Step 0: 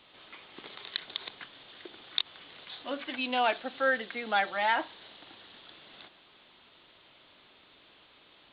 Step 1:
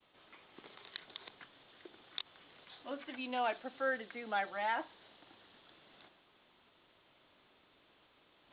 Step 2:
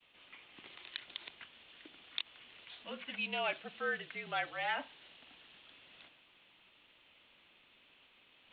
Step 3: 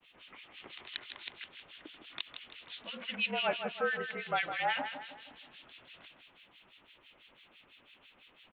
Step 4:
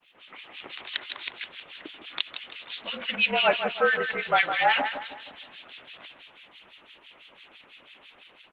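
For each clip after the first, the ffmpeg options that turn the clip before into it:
-af "areverse,acompressor=mode=upward:threshold=0.00282:ratio=2.5,areverse,lowpass=f=2000:p=1,agate=range=0.0224:threshold=0.00141:ratio=3:detection=peak,volume=0.473"
-af "equalizer=f=2700:t=o:w=0.99:g=12.5,afreqshift=-47,volume=0.631"
-filter_complex "[0:a]acrossover=split=1700[s0][s1];[s0]aeval=exprs='val(0)*(1-1/2+1/2*cos(2*PI*6*n/s))':c=same[s2];[s1]aeval=exprs='val(0)*(1-1/2-1/2*cos(2*PI*6*n/s))':c=same[s3];[s2][s3]amix=inputs=2:normalize=0,asplit=2[s4][s5];[s5]aecho=0:1:159|318|477|636|795:0.376|0.162|0.0695|0.0299|0.0128[s6];[s4][s6]amix=inputs=2:normalize=0,volume=2.66"
-af "dynaudnorm=f=120:g=5:m=2.37,lowshelf=f=170:g=-12,volume=1.5" -ar 48000 -c:a libopus -b:a 16k

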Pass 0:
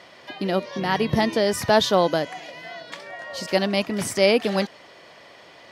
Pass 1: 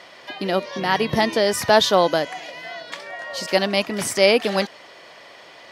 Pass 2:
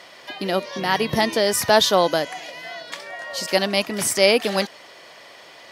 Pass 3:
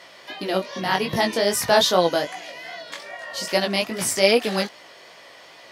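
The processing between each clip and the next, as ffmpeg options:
-af "lowshelf=f=290:g=-8,volume=1.58"
-af "crystalizer=i=1:c=0,volume=0.891"
-af "flanger=delay=16.5:depth=5:speed=2.5,volume=1.19"

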